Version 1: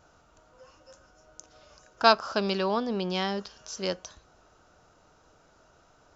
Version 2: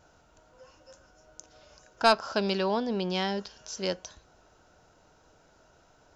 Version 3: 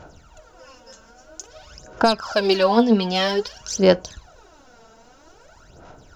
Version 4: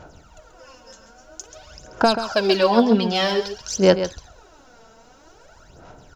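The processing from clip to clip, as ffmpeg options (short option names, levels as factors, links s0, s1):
-af "bandreject=f=1200:w=7.2,acontrast=80,volume=0.447"
-af "alimiter=limit=0.126:level=0:latency=1:release=369,aphaser=in_gain=1:out_gain=1:delay=4.5:decay=0.71:speed=0.51:type=sinusoidal,volume=2.51"
-af "aecho=1:1:134:0.299"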